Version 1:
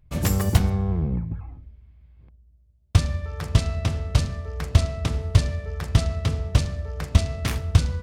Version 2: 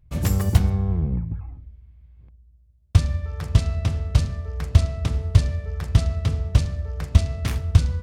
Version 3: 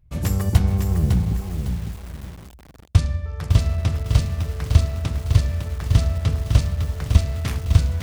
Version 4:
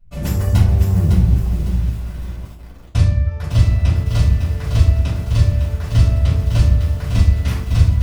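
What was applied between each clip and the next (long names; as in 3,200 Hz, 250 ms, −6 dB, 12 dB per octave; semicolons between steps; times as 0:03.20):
parametric band 64 Hz +5.5 dB 2.8 octaves; level −3 dB
automatic gain control gain up to 10 dB; feedback echo at a low word length 555 ms, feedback 35%, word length 6 bits, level −6 dB; level −1 dB
convolution reverb RT60 0.40 s, pre-delay 3 ms, DRR −8 dB; level −8.5 dB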